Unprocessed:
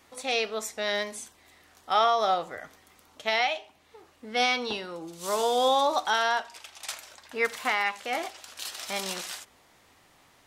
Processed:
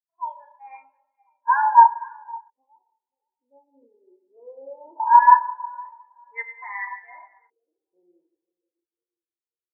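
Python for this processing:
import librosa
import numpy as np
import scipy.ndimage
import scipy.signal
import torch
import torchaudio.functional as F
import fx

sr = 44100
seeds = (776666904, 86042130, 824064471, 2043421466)

y = fx.speed_glide(x, sr, from_pct=133, to_pct=82)
y = scipy.signal.sosfilt(scipy.signal.butter(2, 200.0, 'highpass', fs=sr, output='sos'), y)
y = fx.peak_eq(y, sr, hz=960.0, db=14.5, octaves=0.24)
y = fx.echo_tape(y, sr, ms=524, feedback_pct=68, wet_db=-10, lp_hz=2000.0, drive_db=7.0, wow_cents=22)
y = fx.rev_schroeder(y, sr, rt60_s=2.0, comb_ms=26, drr_db=1.0)
y = fx.filter_lfo_lowpass(y, sr, shape='square', hz=0.2, low_hz=390.0, high_hz=1900.0, q=3.0)
y = fx.spectral_expand(y, sr, expansion=2.5)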